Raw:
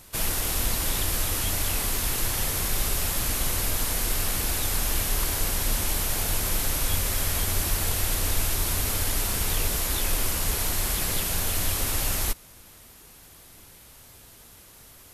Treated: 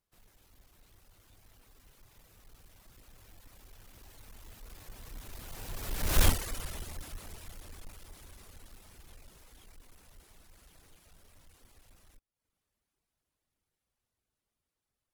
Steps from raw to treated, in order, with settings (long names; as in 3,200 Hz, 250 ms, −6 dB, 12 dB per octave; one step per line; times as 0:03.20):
each half-wave held at its own peak
source passing by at 0:06.23, 33 m/s, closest 2.3 metres
reverb reduction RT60 0.6 s